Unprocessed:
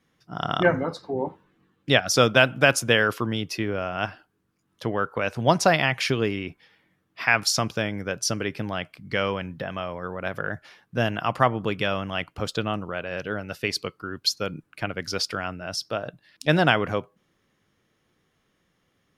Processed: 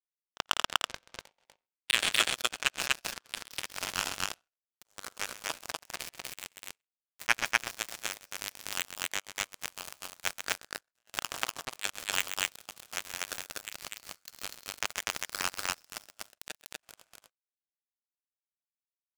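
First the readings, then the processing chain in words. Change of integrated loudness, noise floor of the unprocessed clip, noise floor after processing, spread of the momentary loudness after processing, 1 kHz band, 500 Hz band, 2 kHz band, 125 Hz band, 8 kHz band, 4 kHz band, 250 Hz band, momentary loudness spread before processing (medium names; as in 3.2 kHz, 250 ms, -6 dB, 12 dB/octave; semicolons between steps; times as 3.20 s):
-8.5 dB, -71 dBFS, under -85 dBFS, 17 LU, -11.5 dB, -22.0 dB, -8.5 dB, -26.5 dB, -2.5 dB, -5.0 dB, -24.0 dB, 13 LU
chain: send-on-delta sampling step -29.5 dBFS; simulated room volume 760 m³, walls mixed, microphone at 1.3 m; slow attack 115 ms; compressor with a negative ratio -25 dBFS, ratio -0.5; tilt EQ +2.5 dB/octave; crossover distortion -41 dBFS; low-pass sweep 2.9 kHz -> 7.7 kHz, 1.54–4.66 s; de-esser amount 55%; high-pass 590 Hz 24 dB/octave; power-law waveshaper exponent 3; loudspeakers at several distances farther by 45 m -11 dB, 84 m -1 dB; waveshaping leveller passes 3; trim +3.5 dB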